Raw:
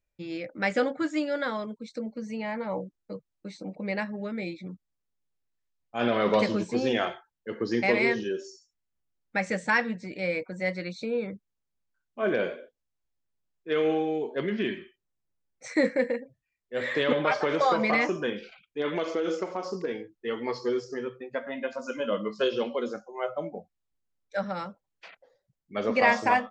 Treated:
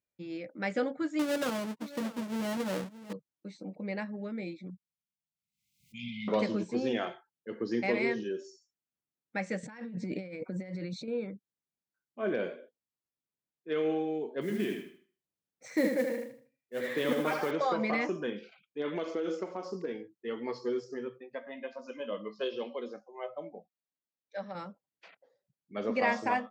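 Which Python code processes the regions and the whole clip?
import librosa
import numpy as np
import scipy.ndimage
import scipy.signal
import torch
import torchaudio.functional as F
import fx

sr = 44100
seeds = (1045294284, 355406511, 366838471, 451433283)

y = fx.chain(x, sr, fx.halfwave_hold(),
    fx.echo_single(ms=623, db=-16.0),
    fx.doppler_dist(depth_ms=0.26), at=(1.19, 3.13))
y = fx.chain(y, sr, fx.brickwall_bandstop(low_hz=230.0, high_hz=2000.0),
    fx.pre_swell(db_per_s=65.0), at=(4.7, 6.28))
y = fx.chain(y, sr, fx.low_shelf(hz=390.0, db=8.5),
    fx.over_compress(threshold_db=-35.0, ratio=-1.0), at=(9.63, 11.08))
y = fx.chain(y, sr, fx.echo_feedback(ms=78, feedback_pct=31, wet_db=-5),
    fx.mod_noise(seeds[0], snr_db=20), at=(14.41, 17.51))
y = fx.chain(y, sr, fx.lowpass(hz=5500.0, slope=24),
    fx.low_shelf(hz=270.0, db=-11.0),
    fx.notch(hz=1400.0, q=5.7), at=(21.18, 24.55))
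y = scipy.signal.sosfilt(scipy.signal.butter(2, 200.0, 'highpass', fs=sr, output='sos'), y)
y = fx.low_shelf(y, sr, hz=280.0, db=11.0)
y = y * librosa.db_to_amplitude(-8.0)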